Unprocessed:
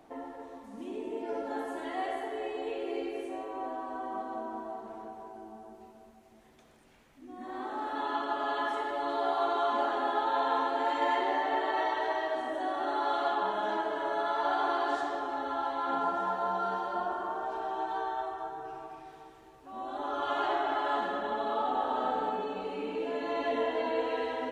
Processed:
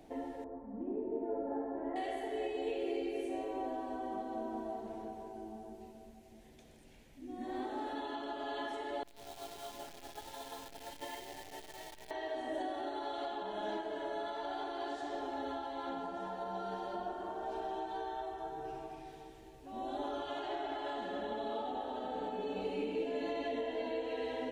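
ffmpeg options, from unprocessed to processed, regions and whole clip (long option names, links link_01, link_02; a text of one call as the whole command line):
ffmpeg -i in.wav -filter_complex "[0:a]asettb=1/sr,asplit=3[link_01][link_02][link_03];[link_01]atrim=end=0.444[link_04];[link_02]atrim=start=0.44:end=1.96,asetpts=PTS-STARTPTS,afade=type=in:duration=0.004:curve=qsin,afade=type=out:start_time=1.516:duration=0.004:curve=qsin,lowpass=frequency=1300:width=0.5412,lowpass=frequency=1300:width=1.3066,bandreject=frequency=60:width_type=h:width=6,bandreject=frequency=120:width_type=h:width=6,bandreject=frequency=180:width_type=h:width=6,bandreject=frequency=240:width_type=h:width=6,bandreject=frequency=300:width_type=h:width=6,bandreject=frequency=360:width_type=h:width=6,bandreject=frequency=420:width_type=h:width=6,bandreject=frequency=480:width_type=h:width=6,asplit=2[link_05][link_06];[link_06]adelay=50,volume=-14dB[link_07];[link_05][link_07]amix=inputs=2:normalize=0,atrim=end_sample=67032[link_08];[link_03]atrim=start=1.956[link_09];[link_04][link_08]acrossfade=duration=0.004:curve1=hsin:curve2=qsin[link_10];[link_10][link_09]acrossfade=duration=0.004:curve1=qsin:curve2=hsin,asettb=1/sr,asplit=3[link_11][link_12][link_13];[link_11]atrim=end=9.034[link_14];[link_12]atrim=start=9.03:end=12.11,asetpts=PTS-STARTPTS,afade=type=in:duration=0.004:curve=qsin,afade=type=out:start_time=3.076:duration=0.004:curve=qsin,agate=range=-33dB:threshold=-18dB:ratio=3:release=100:detection=peak,highshelf=frequency=2600:gain=9.5,acrusher=bits=9:dc=4:mix=0:aa=0.000001[link_15];[link_13]atrim=start=12.106[link_16];[link_14][link_15]acrossfade=duration=0.004:curve1=hsin:curve2=qsin[link_17];[link_17][link_16]acrossfade=duration=0.004:curve1=qsin:curve2=hsin,lowshelf=frequency=74:gain=8,alimiter=level_in=4dB:limit=-24dB:level=0:latency=1:release=467,volume=-4dB,equalizer=frequency=1200:width_type=o:width=0.84:gain=-13.5,volume=2dB" out.wav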